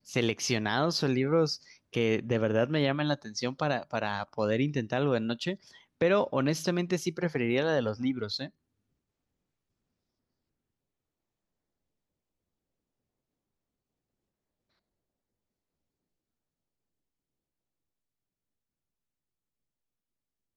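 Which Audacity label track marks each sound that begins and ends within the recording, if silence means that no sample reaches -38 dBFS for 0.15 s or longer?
1.940000	5.550000	sound
6.010000	8.460000	sound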